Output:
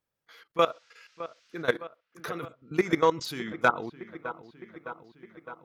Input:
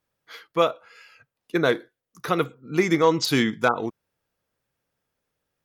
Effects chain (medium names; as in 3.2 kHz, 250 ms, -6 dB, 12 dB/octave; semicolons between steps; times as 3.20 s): dynamic bell 1.5 kHz, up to +4 dB, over -32 dBFS, Q 1.1; level held to a coarse grid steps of 17 dB; 0.60–1.62 s: band noise 1.3–6 kHz -64 dBFS; on a send: feedback echo behind a low-pass 611 ms, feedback 67%, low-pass 2.4 kHz, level -14.5 dB; on the sum: trim -2 dB